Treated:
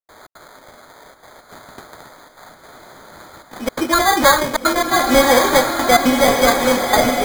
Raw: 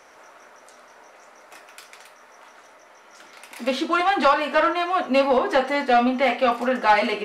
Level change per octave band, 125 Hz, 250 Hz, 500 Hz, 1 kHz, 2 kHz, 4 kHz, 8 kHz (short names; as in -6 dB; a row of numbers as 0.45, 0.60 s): n/a, +6.5 dB, +5.0 dB, +4.0 dB, +6.0 dB, +10.0 dB, +22.5 dB